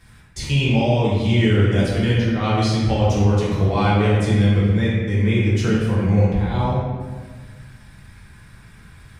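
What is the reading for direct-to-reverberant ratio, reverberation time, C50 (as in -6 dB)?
-8.0 dB, 1.6 s, -1.5 dB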